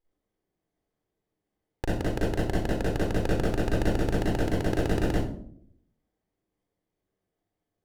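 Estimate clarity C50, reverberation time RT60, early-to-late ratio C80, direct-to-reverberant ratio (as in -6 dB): -2.5 dB, 0.65 s, 4.5 dB, -6.5 dB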